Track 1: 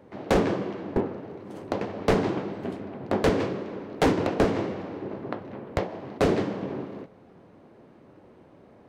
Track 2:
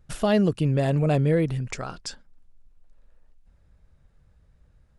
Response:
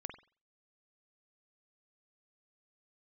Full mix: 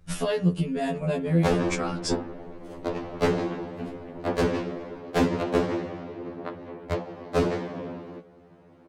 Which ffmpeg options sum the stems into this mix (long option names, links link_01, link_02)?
-filter_complex "[0:a]adelay=1150,volume=1dB[link_01];[1:a]equalizer=frequency=180:width=4.2:gain=7.5,acompressor=threshold=-22dB:ratio=12,volume=3dB,asplit=2[link_02][link_03];[link_03]volume=-5dB[link_04];[2:a]atrim=start_sample=2205[link_05];[link_04][link_05]afir=irnorm=-1:irlink=0[link_06];[link_01][link_02][link_06]amix=inputs=3:normalize=0,afftfilt=real='re*2*eq(mod(b,4),0)':imag='im*2*eq(mod(b,4),0)':win_size=2048:overlap=0.75"